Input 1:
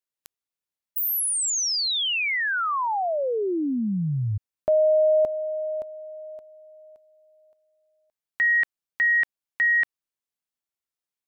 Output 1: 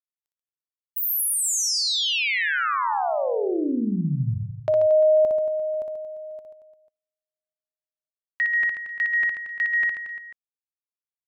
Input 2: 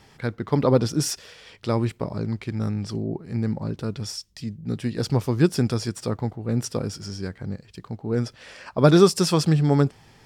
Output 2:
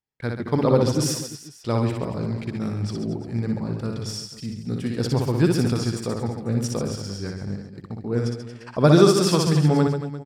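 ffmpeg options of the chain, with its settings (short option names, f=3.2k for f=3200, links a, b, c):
-filter_complex "[0:a]agate=range=-41dB:threshold=-45dB:ratio=16:release=39:detection=peak,asplit=2[a][b];[b]aecho=0:1:60|135|228.8|345.9|492.4:0.631|0.398|0.251|0.158|0.1[c];[a][c]amix=inputs=2:normalize=0,volume=-1dB"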